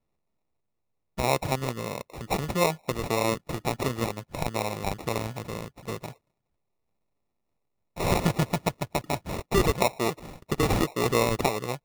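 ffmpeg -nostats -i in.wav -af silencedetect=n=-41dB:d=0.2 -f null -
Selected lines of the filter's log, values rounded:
silence_start: 0.00
silence_end: 1.18 | silence_duration: 1.18
silence_start: 6.12
silence_end: 7.97 | silence_duration: 1.84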